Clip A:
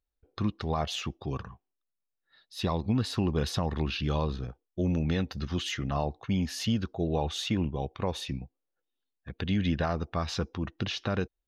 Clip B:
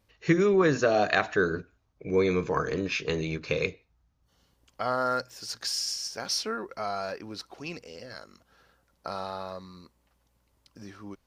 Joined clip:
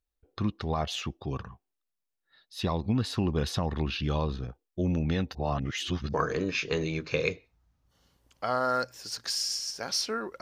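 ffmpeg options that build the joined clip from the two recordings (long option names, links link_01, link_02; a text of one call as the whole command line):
ffmpeg -i cue0.wav -i cue1.wav -filter_complex "[0:a]apad=whole_dur=10.41,atrim=end=10.41,asplit=2[link_01][link_02];[link_01]atrim=end=5.352[link_03];[link_02]atrim=start=5.348:end=6.142,asetpts=PTS-STARTPTS,areverse[link_04];[1:a]atrim=start=2.508:end=6.78[link_05];[link_03][link_04]acrossfade=duration=0.004:curve1=hsin:curve2=hsin[link_06];[link_06][link_05]acrossfade=duration=0.004:curve1=hsin:curve2=hsin" out.wav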